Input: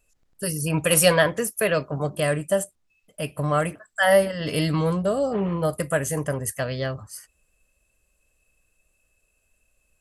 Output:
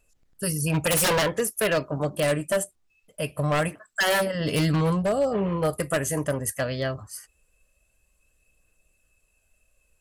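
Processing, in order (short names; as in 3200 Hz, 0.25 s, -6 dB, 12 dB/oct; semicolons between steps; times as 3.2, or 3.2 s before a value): phaser 0.23 Hz, delay 3.7 ms, feedback 24%; wavefolder -16.5 dBFS; 3.68–4.35 low shelf 160 Hz -8 dB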